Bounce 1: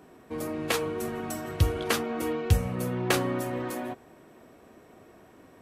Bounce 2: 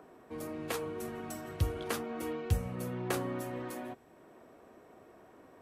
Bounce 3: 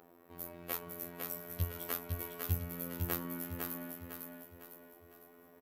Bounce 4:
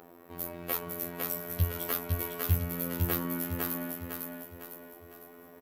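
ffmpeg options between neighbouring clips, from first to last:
-filter_complex "[0:a]acrossover=split=330|1600|6900[a][b][c][d];[b]acompressor=mode=upward:threshold=-43dB:ratio=2.5[e];[c]alimiter=limit=-24dB:level=0:latency=1:release=296[f];[a][e][f][d]amix=inputs=4:normalize=0,volume=-7.5dB"
-af "afftfilt=real='hypot(re,im)*cos(PI*b)':imag='0':win_size=2048:overlap=0.75,aecho=1:1:504|1008|1512|2016|2520:0.631|0.271|0.117|0.0502|0.0216,aexciter=amount=12.1:drive=4.1:freq=12k,volume=-2.5dB"
-af "aeval=exprs='0.2*sin(PI/2*1.58*val(0)/0.2)':c=same"

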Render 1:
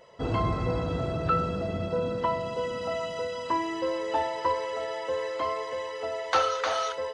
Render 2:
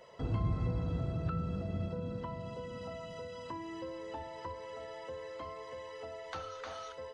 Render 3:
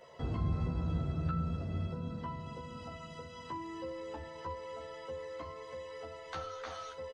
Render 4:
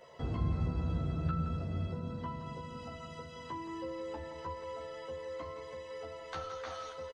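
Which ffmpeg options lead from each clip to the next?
-filter_complex "[0:a]acrossover=split=220[a][b];[b]acompressor=threshold=-45dB:ratio=3[c];[a][c]amix=inputs=2:normalize=0,volume=-2dB"
-filter_complex "[0:a]asplit=2[a][b];[b]adelay=13,volume=-2dB[c];[a][c]amix=inputs=2:normalize=0,volume=-1.5dB"
-af "aecho=1:1:170:0.299"

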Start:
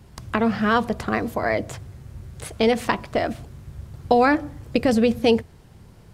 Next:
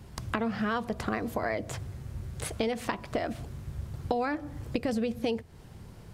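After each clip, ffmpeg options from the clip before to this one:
-af "acompressor=threshold=-28dB:ratio=5"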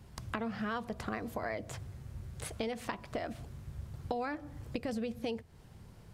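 -af "equalizer=f=340:w=1.6:g=-2,volume=-6dB"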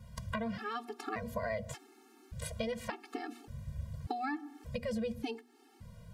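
-af "bandreject=f=120.9:t=h:w=4,bandreject=f=241.8:t=h:w=4,bandreject=f=362.7:t=h:w=4,afftfilt=real='re*gt(sin(2*PI*0.86*pts/sr)*(1-2*mod(floor(b*sr/1024/230),2)),0)':imag='im*gt(sin(2*PI*0.86*pts/sr)*(1-2*mod(floor(b*sr/1024/230),2)),0)':win_size=1024:overlap=0.75,volume=3dB"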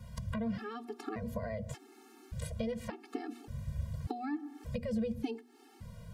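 -filter_complex "[0:a]acrossover=split=470[a][b];[b]acompressor=threshold=-56dB:ratio=2[c];[a][c]amix=inputs=2:normalize=0,volume=3.5dB"

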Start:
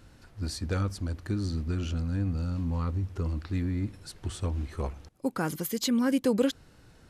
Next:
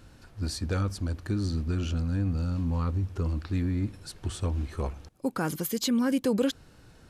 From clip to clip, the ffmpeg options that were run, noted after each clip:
-filter_complex "[0:a]bandreject=f=2k:w=20,asplit=2[a][b];[b]alimiter=limit=-22.5dB:level=0:latency=1:release=20,volume=0.5dB[c];[a][c]amix=inputs=2:normalize=0,volume=-4.5dB"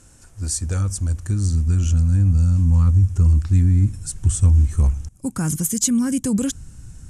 -af "asubboost=boost=10:cutoff=150,aexciter=amount=15.7:drive=1.5:freq=6.3k,lowpass=f=8.7k:w=0.5412,lowpass=f=8.7k:w=1.3066"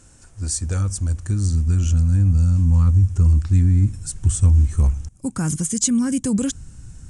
-af "aresample=22050,aresample=44100"

